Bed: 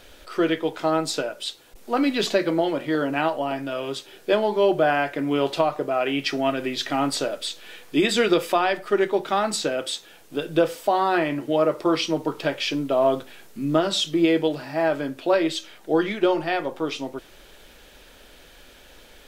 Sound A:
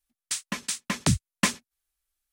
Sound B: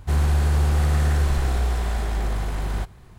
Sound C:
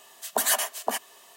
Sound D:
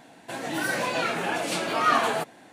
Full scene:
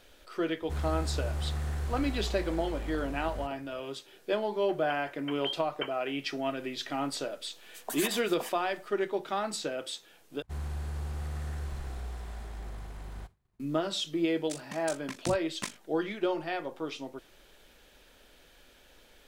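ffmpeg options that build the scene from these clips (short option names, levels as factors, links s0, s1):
-filter_complex "[2:a]asplit=2[s0][s1];[1:a]asplit=2[s2][s3];[0:a]volume=0.335[s4];[s2]lowpass=f=2800:t=q:w=0.5098,lowpass=f=2800:t=q:w=0.6013,lowpass=f=2800:t=q:w=0.9,lowpass=f=2800:t=q:w=2.563,afreqshift=-3300[s5];[s1]agate=range=0.0224:threshold=0.0126:ratio=3:release=100:detection=peak[s6];[s3]tremolo=f=49:d=0.974[s7];[s4]asplit=2[s8][s9];[s8]atrim=end=10.424[s10];[s6]atrim=end=3.18,asetpts=PTS-STARTPTS,volume=0.15[s11];[s9]atrim=start=13.596[s12];[s0]atrim=end=3.18,asetpts=PTS-STARTPTS,volume=0.211,afade=t=in:d=0.004:c=hsin,afade=t=out:st=3.176:d=0.004:c=hsin,adelay=620[s13];[s5]atrim=end=2.32,asetpts=PTS-STARTPTS,volume=0.224,afade=t=in:d=0.004:c=hsin,afade=t=out:st=2.316:d=0.004:c=hsin,adelay=4380[s14];[3:a]atrim=end=1.36,asetpts=PTS-STARTPTS,volume=0.237,afade=t=in:d=0.004:c=hsin,afade=t=out:st=1.356:d=0.004:c=hsin,adelay=7520[s15];[s7]atrim=end=2.32,asetpts=PTS-STARTPTS,volume=0.398,afade=t=in:d=0.004:c=hsin,afade=t=out:st=2.316:d=0.004:c=hsin,adelay=14190[s16];[s10][s11]acrossfade=d=0.004:c1=hsin:c2=hsin[s17];[s17][s12]acrossfade=d=0.004:c1=hsin:c2=hsin[s18];[s18][s13][s14][s15][s16]amix=inputs=5:normalize=0"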